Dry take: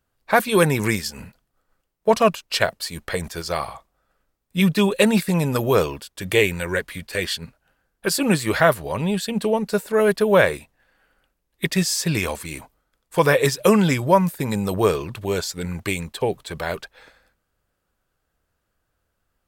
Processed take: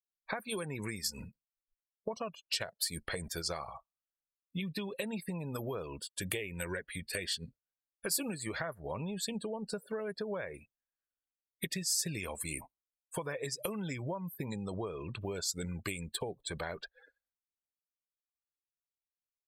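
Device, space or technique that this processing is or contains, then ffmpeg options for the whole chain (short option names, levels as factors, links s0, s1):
serial compression, leveller first: -filter_complex "[0:a]asettb=1/sr,asplit=3[s0][s1][s2];[s0]atrim=end=14.494[s3];[s1]atrim=start=14.49:end=15.19,asetpts=PTS-STARTPTS,afade=t=in:d=0.004:c=qsin,afade=t=out:st=0.696:d=0.004:c=qsin,lowpass=f=9500:w=0.5412,lowpass=f=9500:w=1.3066[s4];[s2]atrim=start=15.186[s5];[s3][s4]acrossfade=d=0.004:c1=hsin:c2=qsin[s6];[s6][s5]acrossfade=d=0.004:c1=qsin:c2=hsin,acompressor=threshold=0.112:ratio=2.5,acompressor=threshold=0.0398:ratio=8,afftdn=nr=34:nf=-41,aemphasis=mode=production:type=50fm,volume=0.473"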